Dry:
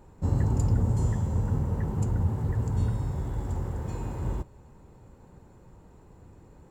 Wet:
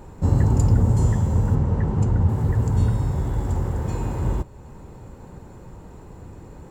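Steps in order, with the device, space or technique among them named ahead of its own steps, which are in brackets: 1.55–2.29 s: distance through air 68 m; parallel compression (in parallel at -3 dB: compression, threshold -45 dBFS, peak gain reduction 23.5 dB); on the sum: trim +6.5 dB

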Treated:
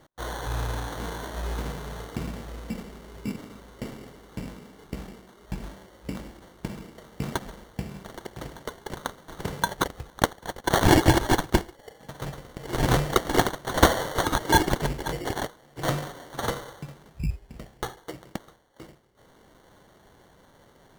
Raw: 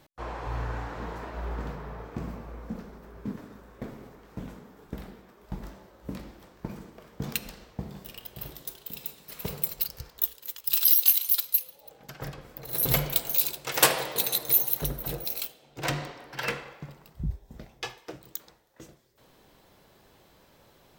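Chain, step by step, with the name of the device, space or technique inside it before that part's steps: crushed at another speed (playback speed 0.5×; sample-and-hold 35×; playback speed 2×); trim +3 dB

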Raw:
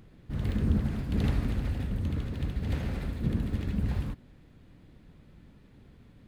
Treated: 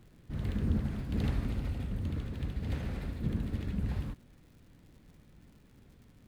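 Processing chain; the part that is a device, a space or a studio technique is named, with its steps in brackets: vinyl LP (wow and flutter; crackle 140 per s -50 dBFS; pink noise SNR 42 dB); 1.46–1.91 s: band-stop 1.7 kHz, Q 11; trim -4 dB

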